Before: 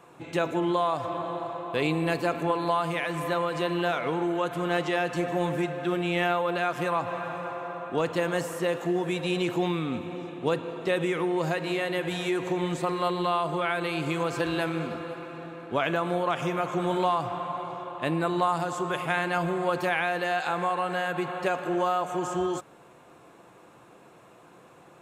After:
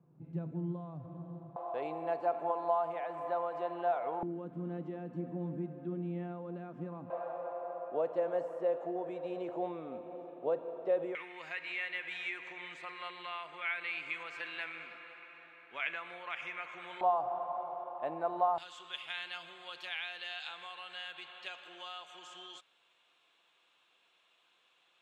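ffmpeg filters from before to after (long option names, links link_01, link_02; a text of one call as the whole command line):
ffmpeg -i in.wav -af "asetnsamples=nb_out_samples=441:pad=0,asendcmd='1.56 bandpass f 730;4.23 bandpass f 220;7.1 bandpass f 600;11.15 bandpass f 2200;17.01 bandpass f 730;18.58 bandpass f 3300',bandpass=frequency=160:width_type=q:width=3.7:csg=0" out.wav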